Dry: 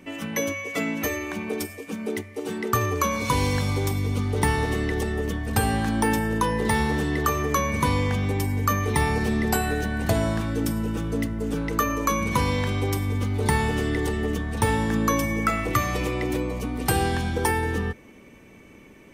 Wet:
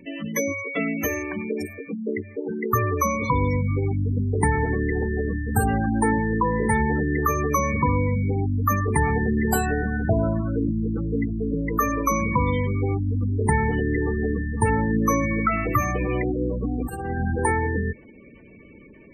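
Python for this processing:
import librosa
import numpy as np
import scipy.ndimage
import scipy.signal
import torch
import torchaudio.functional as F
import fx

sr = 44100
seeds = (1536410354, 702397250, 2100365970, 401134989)

y = fx.over_compress(x, sr, threshold_db=-26.0, ratio=-0.5, at=(16.01, 17.38))
y = fx.spec_gate(y, sr, threshold_db=-15, keep='strong')
y = y * librosa.db_to_amplitude(2.0)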